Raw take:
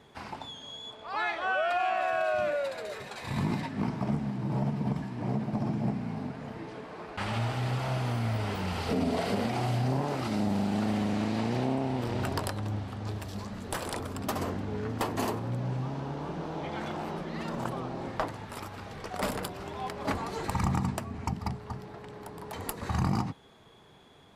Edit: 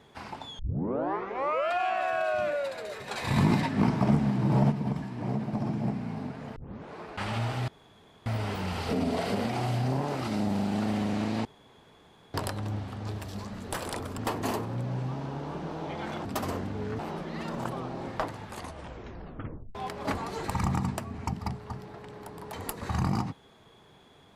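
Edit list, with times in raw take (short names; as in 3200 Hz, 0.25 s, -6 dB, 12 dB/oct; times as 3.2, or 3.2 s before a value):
0.59 tape start 1.14 s
3.08–4.72 gain +6.5 dB
6.56 tape start 0.38 s
7.68–8.26 room tone
11.45–12.34 room tone
14.18–14.92 move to 16.99
18.43 tape stop 1.32 s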